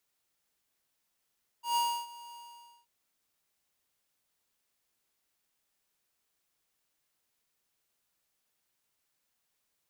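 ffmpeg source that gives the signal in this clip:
-f lavfi -i "aevalsrc='0.0422*(2*lt(mod(947*t,1),0.5)-1)':d=1.234:s=44100,afade=t=in:d=0.13,afade=t=out:st=0.13:d=0.303:silence=0.0944,afade=t=out:st=0.71:d=0.524"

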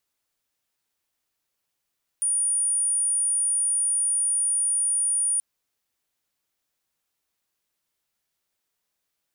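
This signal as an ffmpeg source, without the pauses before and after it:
-f lavfi -i "aevalsrc='0.0944*sin(2*PI*9490*t)':d=3.18:s=44100"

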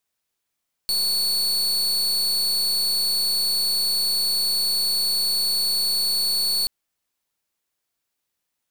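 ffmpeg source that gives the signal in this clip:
-f lavfi -i "aevalsrc='0.0794*(2*lt(mod(4430*t,1),0.39)-1)':d=5.78:s=44100"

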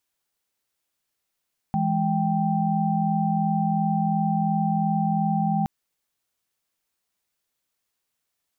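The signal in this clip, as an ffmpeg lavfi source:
-f lavfi -i "aevalsrc='0.0596*(sin(2*PI*164.81*t)+sin(2*PI*207.65*t)+sin(2*PI*783.99*t))':d=3.92:s=44100"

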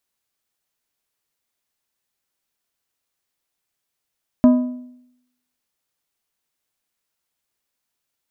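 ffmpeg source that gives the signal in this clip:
-f lavfi -i "aevalsrc='0.501*pow(10,-3*t/0.79)*sin(2*PI*249*t)+0.158*pow(10,-3*t/0.6)*sin(2*PI*622.5*t)+0.0501*pow(10,-3*t/0.521)*sin(2*PI*996*t)+0.0158*pow(10,-3*t/0.487)*sin(2*PI*1245*t)+0.00501*pow(10,-3*t/0.451)*sin(2*PI*1618.5*t)':d=1.55:s=44100"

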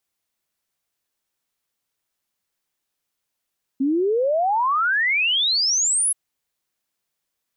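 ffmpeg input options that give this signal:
-f lavfi -i "aevalsrc='0.141*clip(min(t,2.33-t)/0.01,0,1)*sin(2*PI*260*2.33/log(11000/260)*(exp(log(11000/260)*t/2.33)-1))':d=2.33:s=44100"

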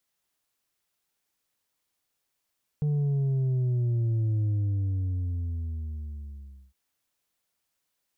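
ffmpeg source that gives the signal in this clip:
-f lavfi -i "aevalsrc='0.0668*clip((3.91-t)/2.29,0,1)*tanh(1.58*sin(2*PI*150*3.91/log(65/150)*(exp(log(65/150)*t/3.91)-1)))/tanh(1.58)':d=3.91:s=44100"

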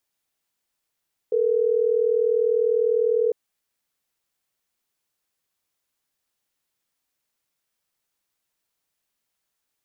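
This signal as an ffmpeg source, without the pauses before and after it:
-f lavfi -i "aevalsrc='0.0944*(sin(2*PI*440*t)+sin(2*PI*480*t))*clip(min(mod(t,6),2-mod(t,6))/0.005,0,1)':d=3.12:s=44100"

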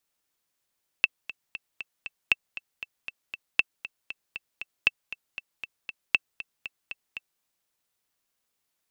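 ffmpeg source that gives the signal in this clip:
-f lavfi -i "aevalsrc='pow(10,(-5.5-16*gte(mod(t,5*60/235),60/235))/20)*sin(2*PI*2660*mod(t,60/235))*exp(-6.91*mod(t,60/235)/0.03)':d=6.38:s=44100"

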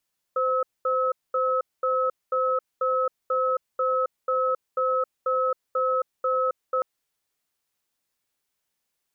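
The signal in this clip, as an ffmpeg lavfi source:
-f lavfi -i "aevalsrc='0.0668*(sin(2*PI*517*t)+sin(2*PI*1290*t))*clip(min(mod(t,0.49),0.27-mod(t,0.49))/0.005,0,1)':d=6.46:s=44100"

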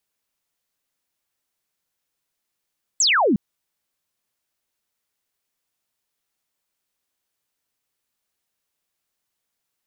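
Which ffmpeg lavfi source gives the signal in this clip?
-f lavfi -i "aevalsrc='0.188*clip(t/0.002,0,1)*clip((0.36-t)/0.002,0,1)*sin(2*PI*8100*0.36/log(180/8100)*(exp(log(180/8100)*t/0.36)-1))':d=0.36:s=44100"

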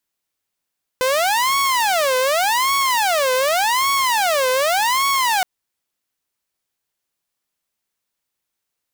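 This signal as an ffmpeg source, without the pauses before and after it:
-f lavfi -i "aevalsrc='0.224*(2*mod((809.5*t-300.5/(2*PI*0.86)*sin(2*PI*0.86*t)),1)-1)':d=4.42:s=44100"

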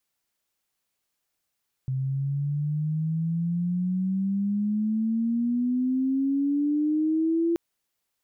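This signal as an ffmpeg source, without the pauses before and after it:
-f lavfi -i "aevalsrc='pow(10,(-24.5+4*t/5.68)/20)*sin(2*PI*130*5.68/log(340/130)*(exp(log(340/130)*t/5.68)-1))':d=5.68:s=44100"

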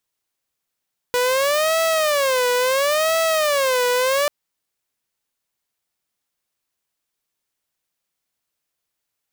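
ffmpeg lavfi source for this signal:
-f lavfi -i "aevalsrc='0.2*(2*mod((572.5*t-80.5/(2*PI*0.73)*sin(2*PI*0.73*t)),1)-1)':d=3.14:s=44100"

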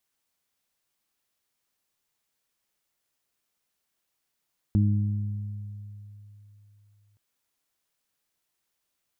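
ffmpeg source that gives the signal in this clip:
-f lavfi -i "aevalsrc='0.119*pow(10,-3*t/3.31)*sin(2*PI*103*t)+0.0794*pow(10,-3*t/1.93)*sin(2*PI*206*t)+0.0266*pow(10,-3*t/1.14)*sin(2*PI*309*t)':d=2.42:s=44100"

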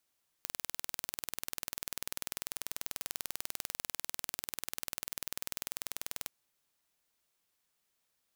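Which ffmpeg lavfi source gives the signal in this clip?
-f lavfi -i "aevalsrc='0.355*eq(mod(n,2172),0)':d=5.84:s=44100"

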